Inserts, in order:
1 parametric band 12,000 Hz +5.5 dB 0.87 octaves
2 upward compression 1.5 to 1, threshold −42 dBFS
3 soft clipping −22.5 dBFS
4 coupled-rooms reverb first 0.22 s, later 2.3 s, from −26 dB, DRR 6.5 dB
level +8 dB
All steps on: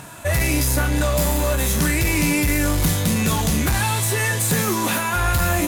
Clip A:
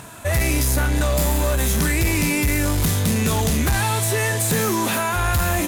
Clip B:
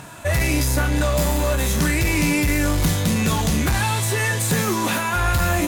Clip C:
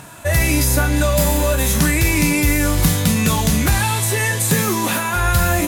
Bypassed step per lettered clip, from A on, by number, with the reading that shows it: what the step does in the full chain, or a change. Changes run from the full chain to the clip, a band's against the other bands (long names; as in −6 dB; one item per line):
4, change in crest factor −5.0 dB
1, 8 kHz band −2.5 dB
3, distortion level −14 dB